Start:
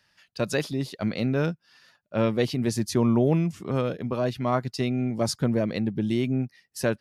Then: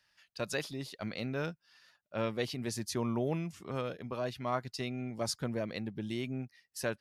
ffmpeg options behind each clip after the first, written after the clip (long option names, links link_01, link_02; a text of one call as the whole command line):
ffmpeg -i in.wav -af "equalizer=frequency=190:width=0.38:gain=-7.5,volume=-5.5dB" out.wav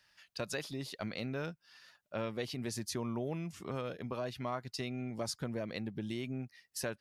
ffmpeg -i in.wav -af "acompressor=threshold=-41dB:ratio=2.5,volume=3.5dB" out.wav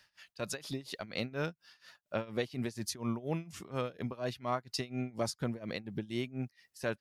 ffmpeg -i in.wav -af "tremolo=f=4.2:d=0.9,volume=5.5dB" out.wav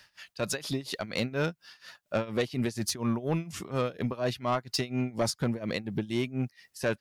ffmpeg -i in.wav -af "asoftclip=type=tanh:threshold=-27.5dB,volume=8dB" out.wav